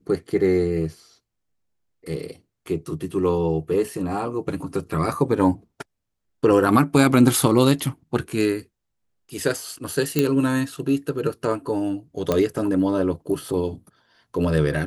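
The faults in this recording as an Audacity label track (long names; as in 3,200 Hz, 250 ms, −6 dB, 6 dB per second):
10.190000	10.190000	click −5 dBFS
12.320000	12.320000	click −8 dBFS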